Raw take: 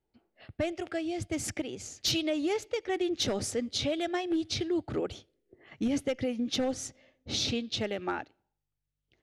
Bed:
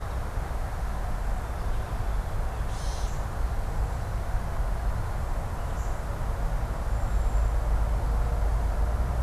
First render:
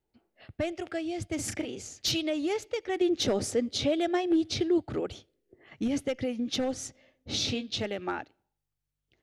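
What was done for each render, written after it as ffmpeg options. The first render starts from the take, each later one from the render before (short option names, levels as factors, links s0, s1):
-filter_complex "[0:a]asettb=1/sr,asplit=3[s0][s1][s2];[s0]atrim=end=1.354[s3];[s1]atrim=start=1.35:end=1.81,asetpts=PTS-STARTPTS,afade=t=in:d=0.004:c=qsin,afade=t=out:st=0.456:d=0.004:c=qsin,asplit=2[s4][s5];[s5]adelay=36,volume=0.531[s6];[s4][s6]amix=inputs=2:normalize=0,atrim=end_sample=20286[s7];[s2]atrim=start=1.806[s8];[s3][s7]acrossfade=d=0.004:c1=hsin:c2=qsin[s9];[s9][s8]acrossfade=d=0.004:c1=qsin:c2=hsin,asettb=1/sr,asplit=3[s10][s11][s12];[s10]atrim=end=3.014[s13];[s11]atrim=start=3.01:end=4.78,asetpts=PTS-STARTPTS,afade=t=in:d=0.004:c=qsin,afade=t=out:st=1.766:d=0.004:c=qsin,equalizer=f=400:w=0.6:g=5[s14];[s12]atrim=start=4.776[s15];[s13][s14]acrossfade=d=0.004:c1=hsin:c2=qsin[s16];[s16][s15]acrossfade=d=0.004:c1=qsin:c2=hsin,asettb=1/sr,asplit=3[s17][s18][s19];[s17]atrim=end=7.304[s20];[s18]atrim=start=7.3:end=7.86,asetpts=PTS-STARTPTS,afade=t=in:d=0.004:c=qsin,afade=t=out:st=0.556:d=0.004:c=qsin,asplit=2[s21][s22];[s22]adelay=20,volume=0.355[s23];[s21][s23]amix=inputs=2:normalize=0,atrim=end_sample=24696[s24];[s19]atrim=start=7.856[s25];[s20][s24]acrossfade=d=0.004:c1=hsin:c2=qsin[s26];[s26][s25]acrossfade=d=0.004:c1=qsin:c2=hsin"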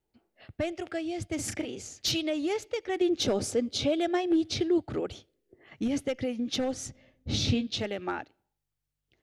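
-filter_complex "[0:a]asettb=1/sr,asplit=3[s0][s1][s2];[s0]atrim=end=3.164[s3];[s1]atrim=start=3.16:end=3.98,asetpts=PTS-STARTPTS,afade=t=in:d=0.004:c=qsin,afade=t=out:st=0.816:d=0.004:c=qsin,bandreject=f=1900:w=8.8[s4];[s2]atrim=start=3.976[s5];[s3][s4]acrossfade=d=0.004:c1=hsin:c2=qsin[s6];[s6][s5]acrossfade=d=0.004:c1=qsin:c2=hsin,asettb=1/sr,asplit=3[s7][s8][s9];[s7]atrim=end=6.864[s10];[s8]atrim=start=6.86:end=7.67,asetpts=PTS-STARTPTS,afade=t=in:d=0.004:c=qsin,afade=t=out:st=0.806:d=0.004:c=qsin,bass=f=250:g=11,treble=f=4000:g=-2[s11];[s9]atrim=start=7.666[s12];[s10][s11]acrossfade=d=0.004:c1=hsin:c2=qsin[s13];[s13][s12]acrossfade=d=0.004:c1=qsin:c2=hsin"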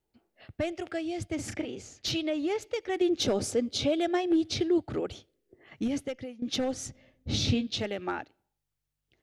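-filter_complex "[0:a]asettb=1/sr,asplit=3[s0][s1][s2];[s0]atrim=end=1.324[s3];[s1]atrim=start=1.32:end=2.61,asetpts=PTS-STARTPTS,afade=t=in:d=0.004:c=qsin,afade=t=out:st=1.286:d=0.004:c=qsin,lowpass=f=3800:p=1[s4];[s2]atrim=start=2.606[s5];[s3][s4]acrossfade=d=0.004:c1=hsin:c2=qsin[s6];[s6][s5]acrossfade=d=0.004:c1=qsin:c2=hsin,asplit=2[s7][s8];[s7]atrim=end=6.42,asetpts=PTS-STARTPTS,afade=t=out:st=5.82:d=0.6:silence=0.149624[s9];[s8]atrim=start=6.42,asetpts=PTS-STARTPTS,afade=t=in:d=0.004:c=hsin:silence=0.149624[s10];[s9][s10]concat=n=2:v=0:a=1"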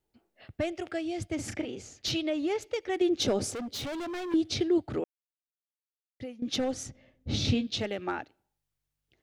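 -filter_complex "[0:a]asettb=1/sr,asplit=3[s0][s1][s2];[s0]atrim=end=3.514[s3];[s1]atrim=start=3.51:end=4.34,asetpts=PTS-STARTPTS,afade=t=in:d=0.004:c=qsin,afade=t=out:st=0.826:d=0.004:c=qsin,asoftclip=type=hard:threshold=0.02[s4];[s2]atrim=start=4.336[s5];[s3][s4]acrossfade=d=0.004:c1=hsin:c2=qsin[s6];[s6][s5]acrossfade=d=0.004:c1=qsin:c2=hsin,asettb=1/sr,asplit=3[s7][s8][s9];[s7]atrim=end=6.834[s10];[s8]atrim=start=6.83:end=7.45,asetpts=PTS-STARTPTS,afade=t=in:d=0.004:c=qsin,afade=t=out:st=0.616:d=0.004:c=qsin,highshelf=f=4600:g=-6[s11];[s9]atrim=start=7.446[s12];[s10][s11]acrossfade=d=0.004:c1=hsin:c2=qsin[s13];[s13][s12]acrossfade=d=0.004:c1=qsin:c2=hsin,asplit=3[s14][s15][s16];[s14]atrim=end=5.04,asetpts=PTS-STARTPTS,afade=t=out:st=5.036:d=0.004:c=hsin[s17];[s15]atrim=start=5.04:end=6.2,asetpts=PTS-STARTPTS,volume=0[s18];[s16]atrim=start=6.2,asetpts=PTS-STARTPTS,afade=t=in:d=0.004:c=hsin[s19];[s17][s18][s19]concat=n=3:v=0:a=1"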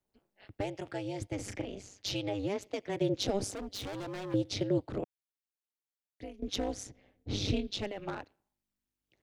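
-filter_complex "[0:a]tremolo=f=200:d=1,acrossover=split=190|730|2900[s0][s1][s2][s3];[s2]asoftclip=type=tanh:threshold=0.0126[s4];[s0][s1][s4][s3]amix=inputs=4:normalize=0"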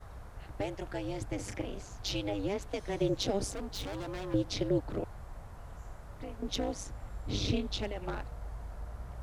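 -filter_complex "[1:a]volume=0.158[s0];[0:a][s0]amix=inputs=2:normalize=0"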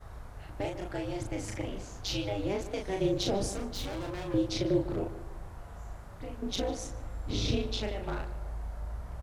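-filter_complex "[0:a]asplit=2[s0][s1];[s1]adelay=37,volume=0.668[s2];[s0][s2]amix=inputs=2:normalize=0,asplit=2[s3][s4];[s4]adelay=150,lowpass=f=2400:p=1,volume=0.224,asplit=2[s5][s6];[s6]adelay=150,lowpass=f=2400:p=1,volume=0.46,asplit=2[s7][s8];[s8]adelay=150,lowpass=f=2400:p=1,volume=0.46,asplit=2[s9][s10];[s10]adelay=150,lowpass=f=2400:p=1,volume=0.46,asplit=2[s11][s12];[s12]adelay=150,lowpass=f=2400:p=1,volume=0.46[s13];[s3][s5][s7][s9][s11][s13]amix=inputs=6:normalize=0"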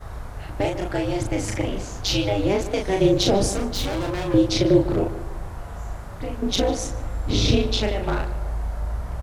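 -af "volume=3.55"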